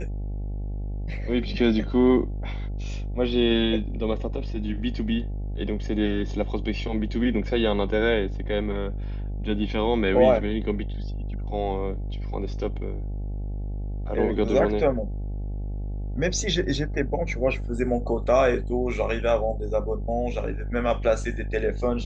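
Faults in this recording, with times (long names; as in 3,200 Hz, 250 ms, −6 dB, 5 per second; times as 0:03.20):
mains buzz 50 Hz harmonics 17 −30 dBFS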